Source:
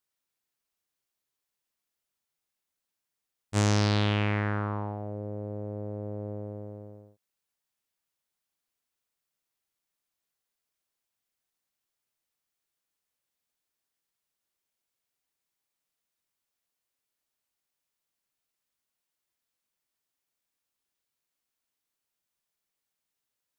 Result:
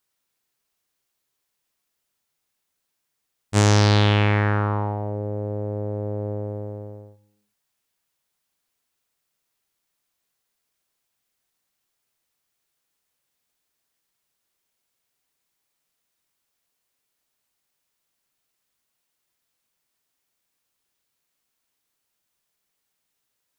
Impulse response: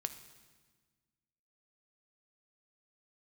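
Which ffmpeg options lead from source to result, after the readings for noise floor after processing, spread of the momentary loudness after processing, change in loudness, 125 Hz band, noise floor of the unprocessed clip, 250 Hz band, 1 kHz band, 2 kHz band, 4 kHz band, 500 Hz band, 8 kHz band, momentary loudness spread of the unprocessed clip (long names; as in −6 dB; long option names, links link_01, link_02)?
−78 dBFS, 16 LU, +8.0 dB, +8.5 dB, below −85 dBFS, +6.0 dB, +9.0 dB, +8.0 dB, +8.0 dB, +8.5 dB, +8.0 dB, 16 LU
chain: -filter_complex "[0:a]asplit=2[link_01][link_02];[1:a]atrim=start_sample=2205,afade=type=out:start_time=0.43:duration=0.01,atrim=end_sample=19404[link_03];[link_02][link_03]afir=irnorm=-1:irlink=0,volume=1dB[link_04];[link_01][link_04]amix=inputs=2:normalize=0,volume=2dB"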